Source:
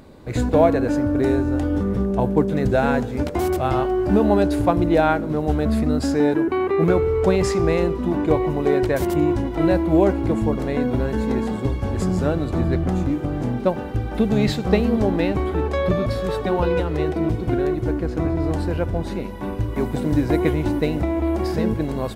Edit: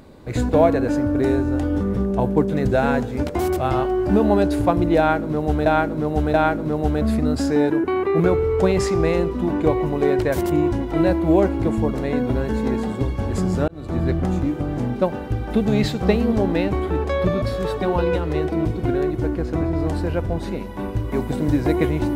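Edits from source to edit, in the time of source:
0:04.98–0:05.66: repeat, 3 plays
0:12.32–0:12.68: fade in

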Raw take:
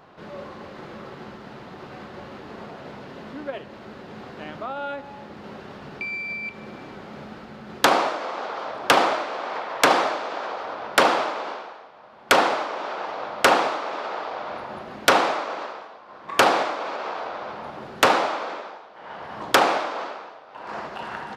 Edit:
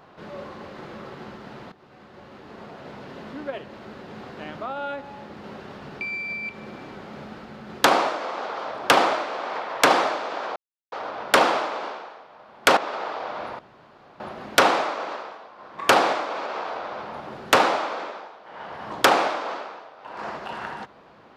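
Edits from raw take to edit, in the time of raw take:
0:01.72–0:03.12: fade in, from −16 dB
0:10.56: splice in silence 0.36 s
0:12.41–0:13.88: remove
0:14.70: splice in room tone 0.61 s

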